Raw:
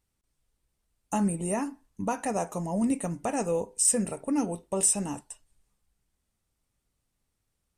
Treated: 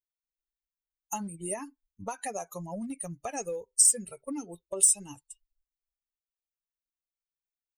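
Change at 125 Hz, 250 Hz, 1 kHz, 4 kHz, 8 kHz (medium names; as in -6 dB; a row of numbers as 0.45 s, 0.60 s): -10.0 dB, -11.0 dB, -6.0 dB, +0.5 dB, +2.5 dB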